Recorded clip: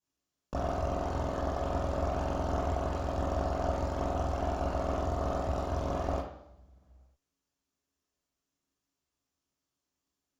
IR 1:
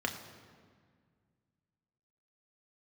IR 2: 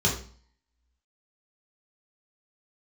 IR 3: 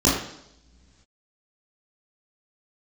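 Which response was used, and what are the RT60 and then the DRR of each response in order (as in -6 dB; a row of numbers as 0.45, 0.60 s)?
3; 1.8 s, 0.45 s, not exponential; 2.5, -4.5, -7.5 dB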